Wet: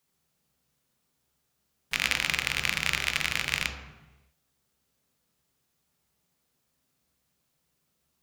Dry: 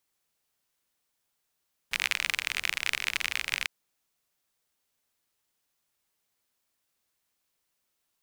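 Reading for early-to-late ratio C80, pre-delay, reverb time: 7.0 dB, 3 ms, 1.1 s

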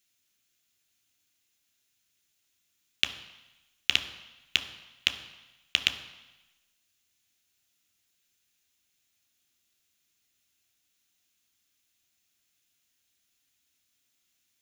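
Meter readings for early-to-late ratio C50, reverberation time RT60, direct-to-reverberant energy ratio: 12.0 dB, 1.0 s, 7.0 dB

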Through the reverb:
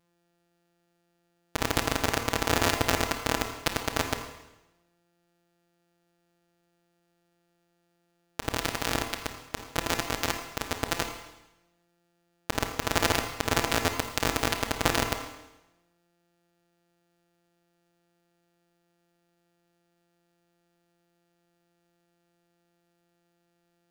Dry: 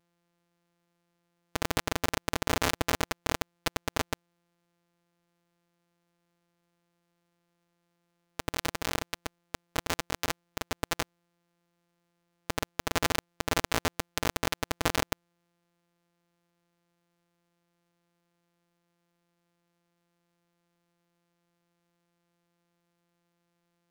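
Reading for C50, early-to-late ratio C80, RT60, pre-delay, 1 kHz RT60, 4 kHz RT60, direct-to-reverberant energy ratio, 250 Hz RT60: 7.0 dB, 8.5 dB, 0.95 s, 26 ms, 0.95 s, 0.95 s, 5.5 dB, 0.95 s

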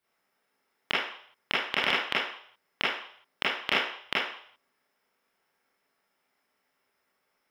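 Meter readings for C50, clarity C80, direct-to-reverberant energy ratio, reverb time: 1.0 dB, 4.5 dB, -9.5 dB, 0.60 s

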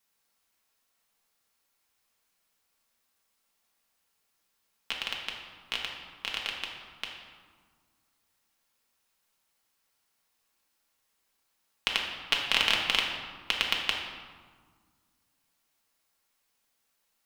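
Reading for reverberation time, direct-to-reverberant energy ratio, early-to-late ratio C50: 1.6 s, -1.5 dB, 3.0 dB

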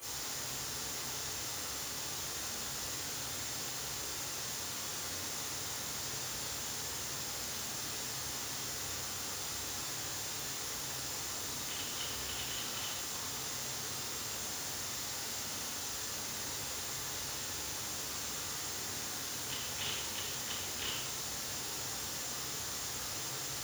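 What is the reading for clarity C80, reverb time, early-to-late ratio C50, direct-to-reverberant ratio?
2.0 dB, 1.1 s, -1.0 dB, -12.0 dB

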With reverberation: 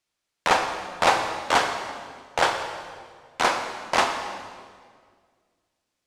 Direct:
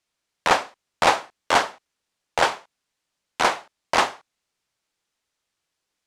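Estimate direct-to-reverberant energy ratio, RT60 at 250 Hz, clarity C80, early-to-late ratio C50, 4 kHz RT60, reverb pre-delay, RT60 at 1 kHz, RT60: 4.5 dB, 2.2 s, 7.5 dB, 6.0 dB, 1.5 s, 19 ms, 1.7 s, 1.9 s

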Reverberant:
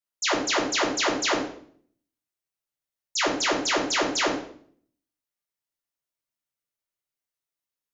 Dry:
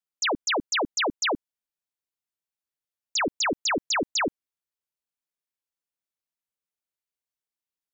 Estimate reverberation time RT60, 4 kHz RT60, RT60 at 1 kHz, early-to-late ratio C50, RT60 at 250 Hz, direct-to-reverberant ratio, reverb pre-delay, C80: 0.55 s, 0.50 s, 0.50 s, 4.5 dB, 0.75 s, -5.5 dB, 3 ms, 9.0 dB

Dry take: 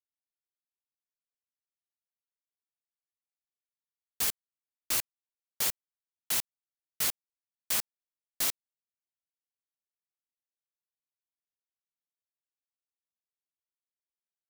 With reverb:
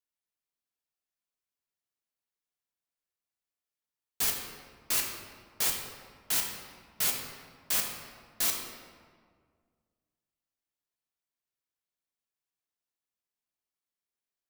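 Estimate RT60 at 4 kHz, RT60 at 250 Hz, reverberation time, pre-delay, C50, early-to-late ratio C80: 1.1 s, 2.2 s, 1.8 s, 3 ms, 3.5 dB, 5.0 dB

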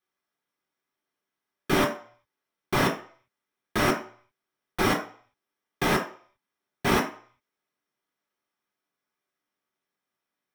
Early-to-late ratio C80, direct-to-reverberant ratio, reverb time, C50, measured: 13.0 dB, -1.5 dB, 0.50 s, 8.5 dB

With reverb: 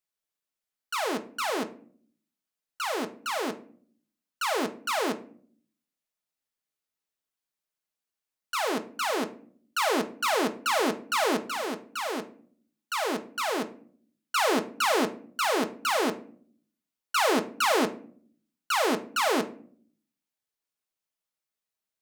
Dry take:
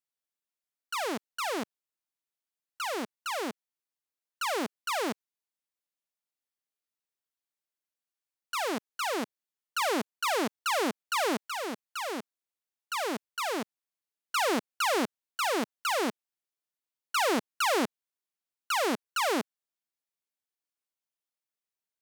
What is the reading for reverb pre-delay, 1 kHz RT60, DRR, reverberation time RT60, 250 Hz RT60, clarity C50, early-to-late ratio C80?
5 ms, 0.45 s, 6.0 dB, 0.50 s, 0.85 s, 15.0 dB, 19.0 dB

